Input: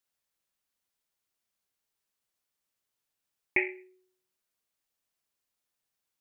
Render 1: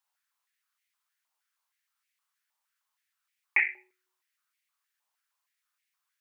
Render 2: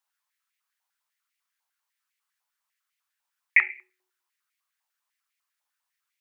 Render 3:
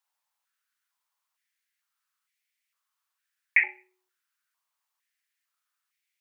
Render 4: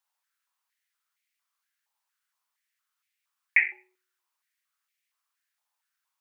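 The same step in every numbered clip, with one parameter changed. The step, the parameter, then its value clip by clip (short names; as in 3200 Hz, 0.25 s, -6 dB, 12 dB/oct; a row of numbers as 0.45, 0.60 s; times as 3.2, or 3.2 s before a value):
stepped high-pass, rate: 6.4, 10, 2.2, 4.3 Hz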